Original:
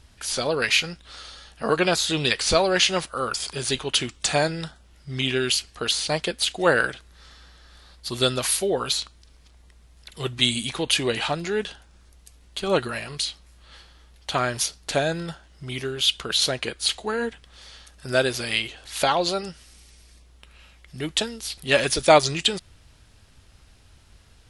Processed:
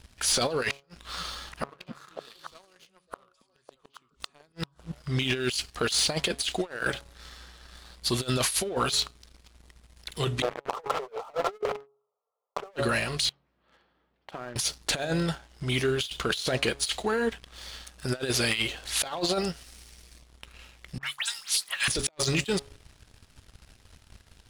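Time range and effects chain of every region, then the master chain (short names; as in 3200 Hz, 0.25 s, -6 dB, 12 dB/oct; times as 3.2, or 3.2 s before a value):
0.7–5.18 bell 1100 Hz +8.5 dB 0.4 oct + flipped gate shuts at -20 dBFS, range -36 dB + delay with a stepping band-pass 0.276 s, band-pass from 190 Hz, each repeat 1.4 oct, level -1 dB
10.42–12.76 brick-wall FIR band-pass 400–1400 Hz + sample leveller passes 5
13.29–14.56 HPF 190 Hz + compressor 5:1, threshold -36 dBFS + tape spacing loss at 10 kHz 43 dB
20.98–21.88 steep high-pass 960 Hz + dynamic EQ 9200 Hz, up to +4 dB, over -41 dBFS, Q 0.97 + dispersion highs, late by 92 ms, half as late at 2700 Hz
whole clip: de-hum 139.2 Hz, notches 9; negative-ratio compressor -27 dBFS, ratio -0.5; sample leveller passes 2; gain -7.5 dB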